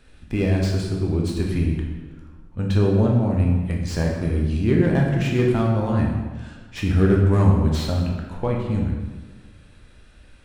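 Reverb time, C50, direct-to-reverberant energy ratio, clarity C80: 1.3 s, 2.5 dB, −1.0 dB, 5.0 dB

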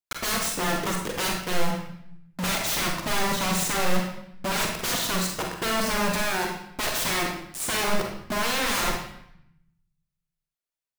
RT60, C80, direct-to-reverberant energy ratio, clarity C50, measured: 0.70 s, 6.5 dB, 0.5 dB, 3.0 dB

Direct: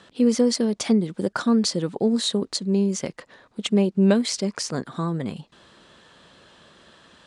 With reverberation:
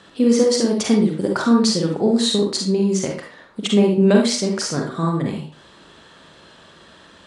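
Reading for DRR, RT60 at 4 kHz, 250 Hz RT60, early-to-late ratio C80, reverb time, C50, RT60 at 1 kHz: 0.0 dB, 0.35 s, 0.40 s, 9.0 dB, 0.45 s, 3.5 dB, 0.45 s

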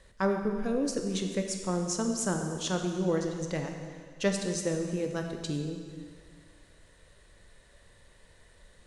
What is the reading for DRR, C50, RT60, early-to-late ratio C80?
3.5 dB, 4.5 dB, 1.9 s, 6.0 dB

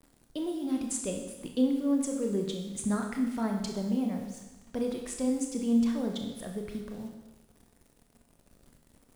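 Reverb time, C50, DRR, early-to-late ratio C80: 1.1 s, 5.0 dB, 2.5 dB, 7.5 dB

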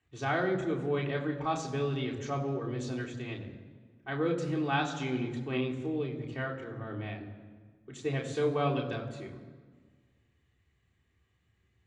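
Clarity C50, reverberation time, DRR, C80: 9.0 dB, 1.5 s, −1.5 dB, 10.5 dB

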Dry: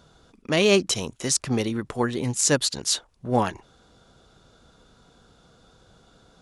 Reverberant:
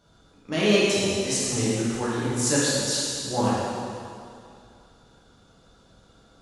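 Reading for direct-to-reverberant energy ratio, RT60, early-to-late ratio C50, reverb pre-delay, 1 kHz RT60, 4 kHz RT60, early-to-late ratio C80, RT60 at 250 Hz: −9.0 dB, 2.4 s, −3.5 dB, 5 ms, 2.4 s, 2.2 s, −1.5 dB, 2.3 s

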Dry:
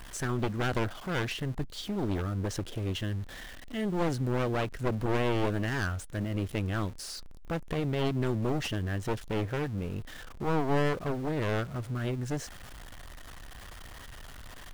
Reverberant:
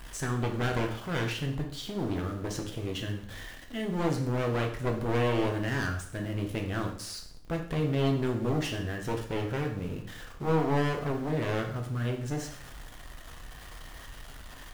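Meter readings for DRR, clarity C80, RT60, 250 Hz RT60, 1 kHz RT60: 2.0 dB, 11.0 dB, 0.65 s, 0.60 s, 0.65 s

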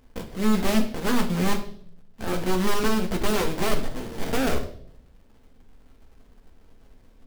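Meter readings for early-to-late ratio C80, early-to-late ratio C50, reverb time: 14.5 dB, 10.5 dB, 0.60 s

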